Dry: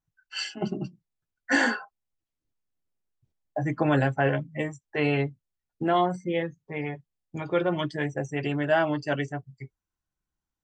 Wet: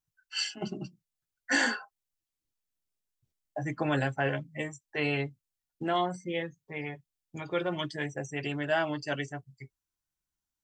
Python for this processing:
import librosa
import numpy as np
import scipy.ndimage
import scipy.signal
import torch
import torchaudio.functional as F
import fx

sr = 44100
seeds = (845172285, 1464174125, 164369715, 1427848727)

y = fx.high_shelf(x, sr, hz=2500.0, db=10.5)
y = y * 10.0 ** (-6.5 / 20.0)